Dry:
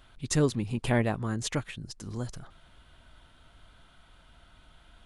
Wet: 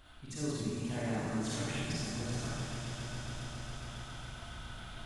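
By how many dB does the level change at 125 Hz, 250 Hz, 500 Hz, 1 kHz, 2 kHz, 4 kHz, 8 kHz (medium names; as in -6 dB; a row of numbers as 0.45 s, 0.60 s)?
-5.5 dB, -5.0 dB, -8.5 dB, -4.5 dB, -4.0 dB, -1.0 dB, -4.0 dB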